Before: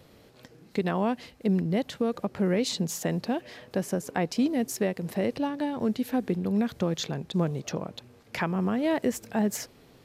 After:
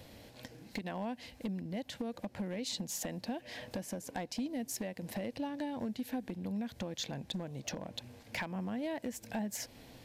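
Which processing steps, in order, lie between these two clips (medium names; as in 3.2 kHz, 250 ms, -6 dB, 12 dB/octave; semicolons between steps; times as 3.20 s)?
compression 6:1, threshold -37 dBFS, peak gain reduction 15 dB; hard clipper -32 dBFS, distortion -20 dB; graphic EQ with 31 bands 160 Hz -8 dB, 400 Hz -12 dB, 1.25 kHz -11 dB; trim +3.5 dB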